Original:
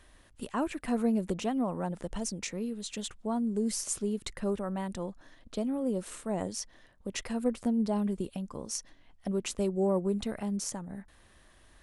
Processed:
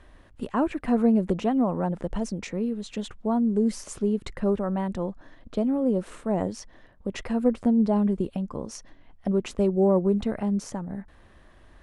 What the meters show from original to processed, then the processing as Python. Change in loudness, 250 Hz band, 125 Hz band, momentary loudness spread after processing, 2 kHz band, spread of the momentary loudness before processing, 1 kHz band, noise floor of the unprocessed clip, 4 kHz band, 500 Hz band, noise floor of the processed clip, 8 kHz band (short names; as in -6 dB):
+7.0 dB, +7.5 dB, +7.5 dB, 13 LU, +3.0 dB, 11 LU, +6.0 dB, -60 dBFS, -2.0 dB, +7.0 dB, -54 dBFS, -6.5 dB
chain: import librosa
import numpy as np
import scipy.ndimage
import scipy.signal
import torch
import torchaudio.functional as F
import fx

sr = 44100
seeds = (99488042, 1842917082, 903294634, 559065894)

y = fx.lowpass(x, sr, hz=1400.0, slope=6)
y = y * 10.0 ** (7.5 / 20.0)